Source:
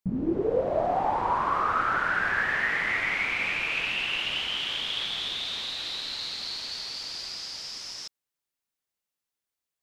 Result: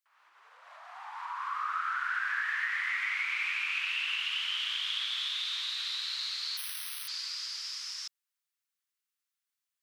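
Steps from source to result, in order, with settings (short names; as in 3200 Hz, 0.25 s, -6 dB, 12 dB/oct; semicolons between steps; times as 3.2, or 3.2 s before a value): compressor 4:1, threshold -28 dBFS, peak gain reduction 7 dB; steep high-pass 1100 Hz 36 dB/oct; 6.57–7.08 careless resampling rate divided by 6×, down filtered, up zero stuff; gain -1 dB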